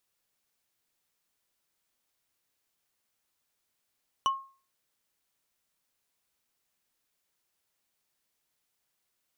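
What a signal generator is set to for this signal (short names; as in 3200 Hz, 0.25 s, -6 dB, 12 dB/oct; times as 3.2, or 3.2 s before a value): wood hit, lowest mode 1080 Hz, decay 0.38 s, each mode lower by 7 dB, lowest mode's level -20 dB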